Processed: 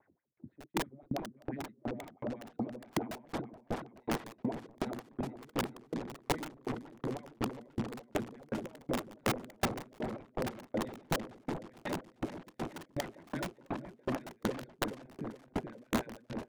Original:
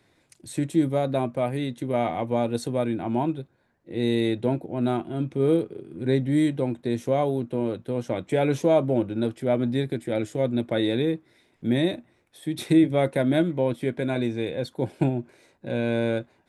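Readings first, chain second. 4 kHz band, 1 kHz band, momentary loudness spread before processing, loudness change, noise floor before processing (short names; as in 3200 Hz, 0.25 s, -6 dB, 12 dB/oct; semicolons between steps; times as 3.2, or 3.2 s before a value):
-8.5 dB, -8.0 dB, 9 LU, -14.0 dB, -65 dBFS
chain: wow and flutter 17 cents; notches 60/120/180/240/300/360/420/480 Hz; low-pass opened by the level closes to 1200 Hz, open at -18.5 dBFS; high shelf 4400 Hz +12 dB; reverse; compressor 12:1, threshold -31 dBFS, peak gain reduction 18 dB; reverse; RIAA curve playback; wah 6 Hz 200–2000 Hz, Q 4.2; wrapped overs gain 30.5 dB; on a send: repeats that get brighter 0.424 s, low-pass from 750 Hz, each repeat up 1 oct, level -3 dB; on the sum: dB-ramp tremolo decaying 2.7 Hz, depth 36 dB; gain +9 dB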